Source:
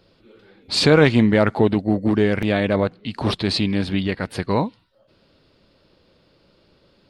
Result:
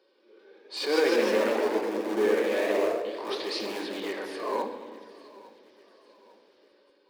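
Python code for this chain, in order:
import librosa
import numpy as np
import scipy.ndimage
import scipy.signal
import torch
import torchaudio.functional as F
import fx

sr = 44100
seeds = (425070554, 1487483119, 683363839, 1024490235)

p1 = fx.ellip_lowpass(x, sr, hz=3100.0, order=4, stop_db=40, at=(1.16, 1.99))
p2 = fx.hpss(p1, sr, part='percussive', gain_db=-7)
p3 = (np.mod(10.0 ** (16.0 / 20.0) * p2 + 1.0, 2.0) - 1.0) / 10.0 ** (16.0 / 20.0)
p4 = p2 + F.gain(torch.from_numpy(p3), -9.5).numpy()
p5 = fx.transient(p4, sr, attack_db=-8, sustain_db=3)
p6 = scipy.signal.sosfilt(scipy.signal.cheby2(4, 40, 170.0, 'highpass', fs=sr, output='sos'), p5)
p7 = fx.tilt_eq(p6, sr, slope=-1.5)
p8 = fx.notch_comb(p7, sr, f0_hz=670.0)
p9 = p8 + fx.echo_feedback(p8, sr, ms=851, feedback_pct=46, wet_db=-20.0, dry=0)
p10 = fx.room_shoebox(p9, sr, seeds[0], volume_m3=1900.0, walls='mixed', distance_m=1.1)
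p11 = fx.echo_pitch(p10, sr, ms=200, semitones=1, count=3, db_per_echo=-3.0)
y = F.gain(torch.from_numpy(p11), -6.0).numpy()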